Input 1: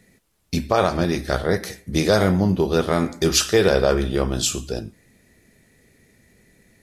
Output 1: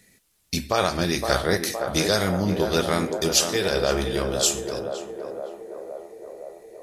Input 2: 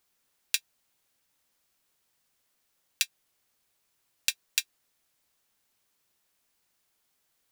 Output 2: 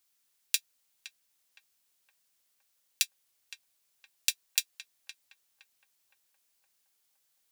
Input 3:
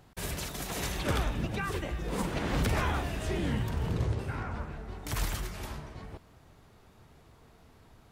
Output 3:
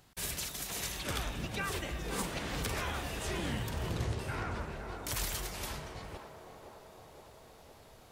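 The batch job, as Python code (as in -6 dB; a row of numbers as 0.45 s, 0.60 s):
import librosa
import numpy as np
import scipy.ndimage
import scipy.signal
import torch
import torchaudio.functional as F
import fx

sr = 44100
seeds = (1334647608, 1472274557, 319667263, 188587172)

p1 = fx.high_shelf(x, sr, hz=2000.0, db=11.0)
p2 = fx.rider(p1, sr, range_db=4, speed_s=0.5)
p3 = p2 + fx.echo_banded(p2, sr, ms=515, feedback_pct=75, hz=590.0, wet_db=-4.5, dry=0)
y = p3 * librosa.db_to_amplitude(-7.0)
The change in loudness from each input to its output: -3.0 LU, -0.5 LU, -3.5 LU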